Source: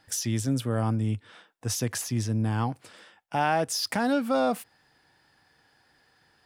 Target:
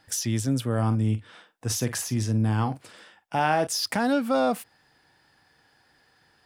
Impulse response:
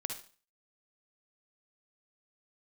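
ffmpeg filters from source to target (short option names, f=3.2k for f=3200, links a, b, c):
-filter_complex "[0:a]asettb=1/sr,asplit=3[a][b][c];[a]atrim=end=0.744[d];[b]atrim=start=0.74:end=3.67,asetpts=PTS-STARTPTS,afade=t=in:d=0.004:c=qsin,afade=t=out:st=2.926:d=0.004:c=qsin,asplit=2[e][f];[f]adelay=46,volume=-12dB[g];[e][g]amix=inputs=2:normalize=0,atrim=end_sample=129213[h];[c]atrim=start=3.666[i];[d][h]acrossfade=d=0.004:c1=hsin:c2=qsin[j];[j][i]acrossfade=d=0.004:c1=qsin:c2=hsin,volume=1.5dB"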